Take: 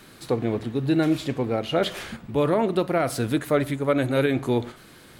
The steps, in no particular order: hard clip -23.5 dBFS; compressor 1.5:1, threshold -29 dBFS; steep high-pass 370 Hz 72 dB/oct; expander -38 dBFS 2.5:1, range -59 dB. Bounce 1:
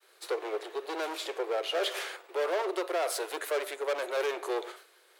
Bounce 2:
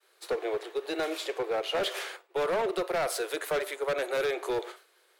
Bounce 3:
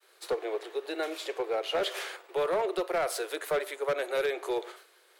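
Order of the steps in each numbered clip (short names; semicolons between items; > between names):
expander > hard clip > compressor > steep high-pass; steep high-pass > expander > hard clip > compressor; expander > compressor > steep high-pass > hard clip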